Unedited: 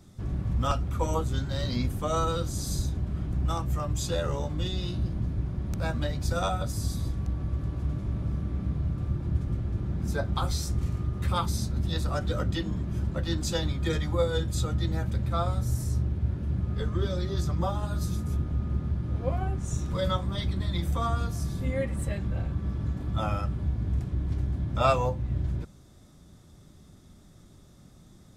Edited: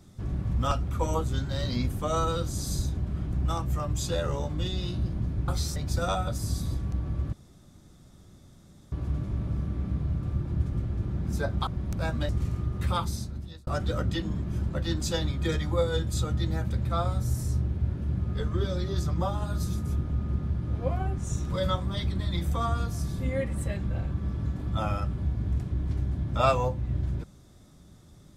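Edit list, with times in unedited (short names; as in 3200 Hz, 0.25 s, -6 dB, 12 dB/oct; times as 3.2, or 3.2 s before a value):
5.48–6.1 swap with 10.42–10.7
7.67 insert room tone 1.59 s
11.31–12.08 fade out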